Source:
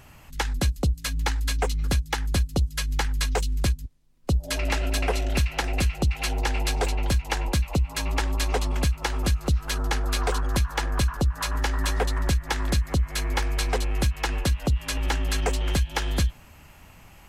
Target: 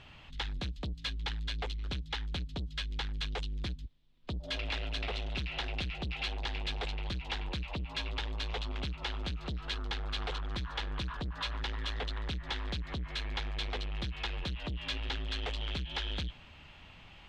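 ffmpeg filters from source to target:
-af "asoftclip=type=tanh:threshold=0.0376,lowpass=f=3500:t=q:w=3.5,volume=0.531"

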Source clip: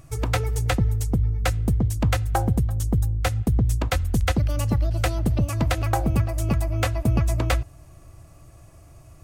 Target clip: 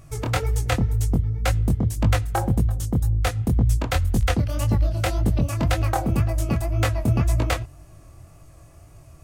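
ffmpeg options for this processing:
-af "flanger=delay=18.5:depth=7.4:speed=1.9,volume=1.5"

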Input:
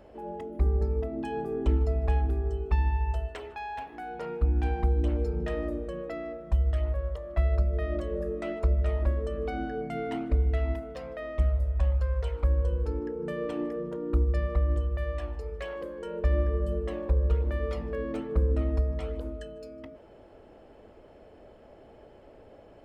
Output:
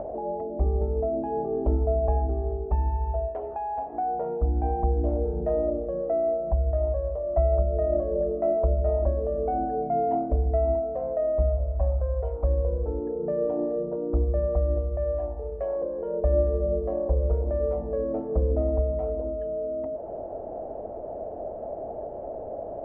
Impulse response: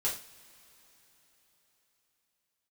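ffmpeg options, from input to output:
-af "acompressor=mode=upward:threshold=0.0251:ratio=2.5,lowpass=f=680:t=q:w=4.9"

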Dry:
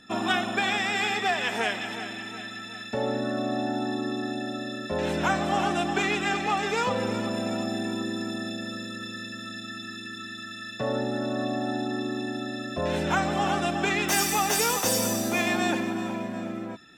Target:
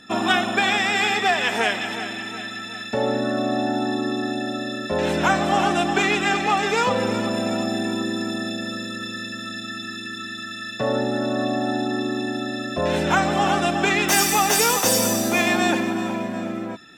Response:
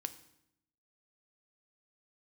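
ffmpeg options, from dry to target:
-af "lowshelf=f=110:g=-5,volume=2"

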